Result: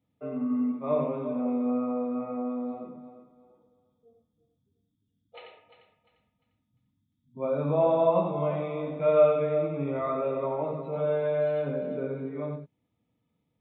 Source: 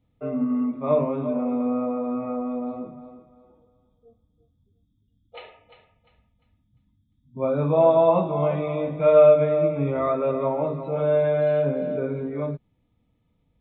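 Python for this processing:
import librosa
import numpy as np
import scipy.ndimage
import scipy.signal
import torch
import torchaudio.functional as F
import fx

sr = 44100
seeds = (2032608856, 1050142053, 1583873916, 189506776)

p1 = scipy.signal.sosfilt(scipy.signal.butter(2, 130.0, 'highpass', fs=sr, output='sos'), x)
p2 = p1 + fx.echo_single(p1, sr, ms=89, db=-5.0, dry=0)
y = F.gain(torch.from_numpy(p2), -6.0).numpy()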